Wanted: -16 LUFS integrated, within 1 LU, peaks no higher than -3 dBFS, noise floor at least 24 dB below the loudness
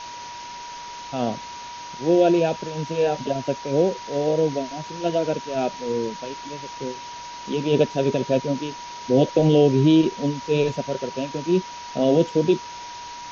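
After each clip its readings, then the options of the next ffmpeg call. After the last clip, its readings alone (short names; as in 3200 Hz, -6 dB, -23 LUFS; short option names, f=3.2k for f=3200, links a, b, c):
steady tone 960 Hz; tone level -35 dBFS; noise floor -37 dBFS; noise floor target -47 dBFS; loudness -22.5 LUFS; peak -6.5 dBFS; loudness target -16.0 LUFS
-> -af "bandreject=f=960:w=30"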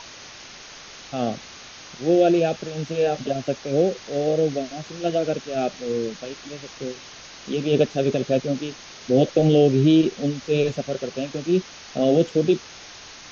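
steady tone none; noise floor -42 dBFS; noise floor target -47 dBFS
-> -af "afftdn=nr=6:nf=-42"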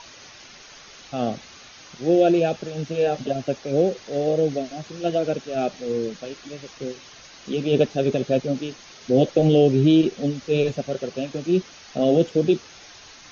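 noise floor -46 dBFS; noise floor target -47 dBFS
-> -af "afftdn=nr=6:nf=-46"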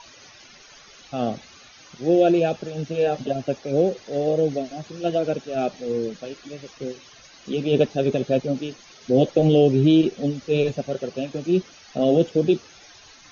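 noise floor -49 dBFS; loudness -22.5 LUFS; peak -6.5 dBFS; loudness target -16.0 LUFS
-> -af "volume=6.5dB,alimiter=limit=-3dB:level=0:latency=1"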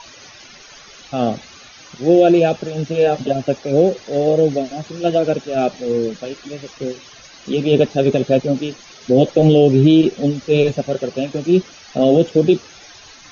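loudness -16.5 LUFS; peak -3.0 dBFS; noise floor -42 dBFS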